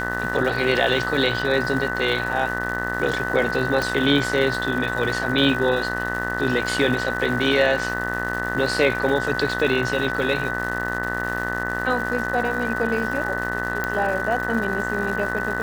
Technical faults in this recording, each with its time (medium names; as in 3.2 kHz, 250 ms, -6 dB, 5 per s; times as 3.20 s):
buzz 60 Hz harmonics 33 -29 dBFS
crackle 360 per s -30 dBFS
whine 1.5 kHz -27 dBFS
3.82 s: pop
13.84 s: pop -10 dBFS